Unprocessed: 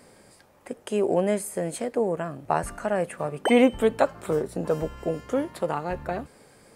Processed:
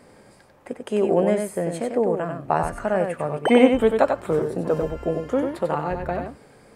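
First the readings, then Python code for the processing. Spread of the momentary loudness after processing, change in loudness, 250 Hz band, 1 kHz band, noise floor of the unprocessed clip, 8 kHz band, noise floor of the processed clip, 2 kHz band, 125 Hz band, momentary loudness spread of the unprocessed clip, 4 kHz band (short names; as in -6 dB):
10 LU, +3.5 dB, +4.0 dB, +3.5 dB, -56 dBFS, -3.5 dB, -52 dBFS, +2.5 dB, +4.0 dB, 11 LU, +1.5 dB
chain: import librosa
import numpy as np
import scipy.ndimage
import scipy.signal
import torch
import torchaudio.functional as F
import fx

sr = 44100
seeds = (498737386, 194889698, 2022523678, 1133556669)

y = fx.high_shelf(x, sr, hz=3900.0, db=-9.0)
y = y + 10.0 ** (-5.5 / 20.0) * np.pad(y, (int(94 * sr / 1000.0), 0))[:len(y)]
y = y * librosa.db_to_amplitude(3.0)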